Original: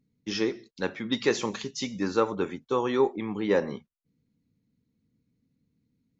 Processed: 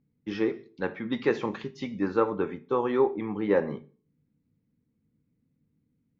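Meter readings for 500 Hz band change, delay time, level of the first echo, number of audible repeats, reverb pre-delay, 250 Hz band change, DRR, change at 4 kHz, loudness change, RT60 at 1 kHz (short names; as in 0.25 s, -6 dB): +0.5 dB, none, none, none, 3 ms, +0.5 dB, 11.0 dB, -10.5 dB, 0.0 dB, 0.40 s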